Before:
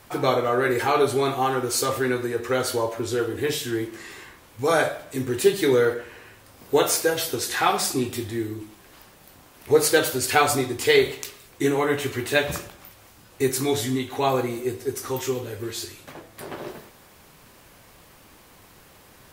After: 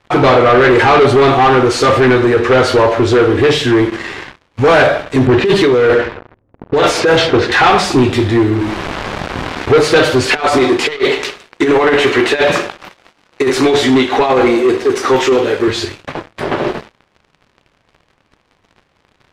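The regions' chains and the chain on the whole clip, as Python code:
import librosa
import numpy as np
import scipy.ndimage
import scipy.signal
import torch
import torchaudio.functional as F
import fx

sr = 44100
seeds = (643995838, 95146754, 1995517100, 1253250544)

y = fx.chain(x, sr, fx.env_lowpass(base_hz=340.0, full_db=-17.5),
    fx.over_compress(threshold_db=-24.0, ratio=-1.0), at=(5.27, 7.52))
y = fx.chain(y, sr, fx.dead_time(dead_ms=0.25),
    fx.env_flatten(amount_pct=70), at=(8.53, 9.71))
y = fx.chain(y, sr, fx.highpass(hz=280.0, slope=12),
    fx.over_compress(threshold_db=-25.0, ratio=-0.5), at=(10.26, 15.68))
y = fx.leveller(y, sr, passes=5)
y = scipy.signal.sosfilt(scipy.signal.butter(2, 3400.0, 'lowpass', fs=sr, output='sos'), y)
y = y * librosa.db_to_amplitude(1.0)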